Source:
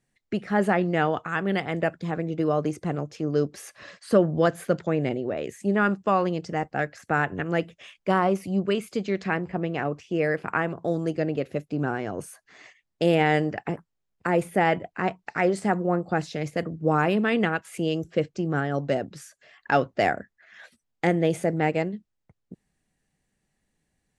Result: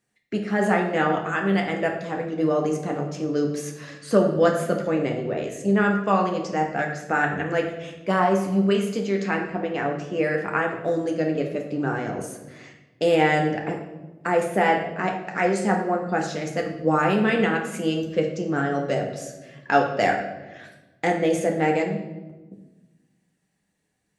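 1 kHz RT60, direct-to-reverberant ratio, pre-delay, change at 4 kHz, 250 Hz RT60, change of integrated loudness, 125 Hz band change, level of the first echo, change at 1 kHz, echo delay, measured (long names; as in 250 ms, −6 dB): 1.0 s, 1.0 dB, 4 ms, +2.5 dB, 1.7 s, +2.0 dB, −0.5 dB, no echo audible, +3.0 dB, no echo audible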